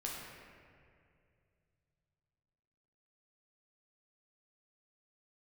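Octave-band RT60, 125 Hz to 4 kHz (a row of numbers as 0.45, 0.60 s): 4.0, 2.7, 2.7, 2.1, 2.1, 1.4 s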